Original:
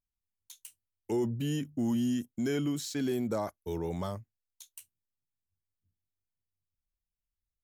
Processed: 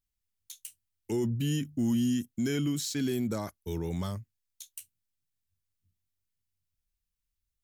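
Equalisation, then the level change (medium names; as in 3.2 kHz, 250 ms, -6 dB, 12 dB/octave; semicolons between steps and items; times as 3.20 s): peaking EQ 690 Hz -10.5 dB 2 oct; +5.0 dB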